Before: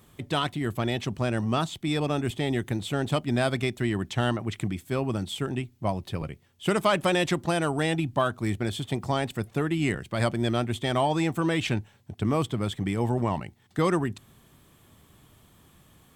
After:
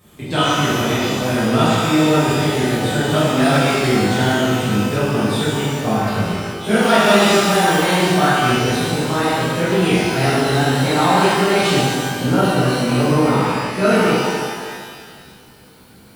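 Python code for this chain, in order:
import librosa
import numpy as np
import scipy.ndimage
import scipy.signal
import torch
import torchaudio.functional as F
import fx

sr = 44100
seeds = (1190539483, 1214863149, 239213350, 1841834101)

y = fx.pitch_glide(x, sr, semitones=4.5, runs='starting unshifted')
y = fx.rev_shimmer(y, sr, seeds[0], rt60_s=1.8, semitones=12, shimmer_db=-8, drr_db=-11.5)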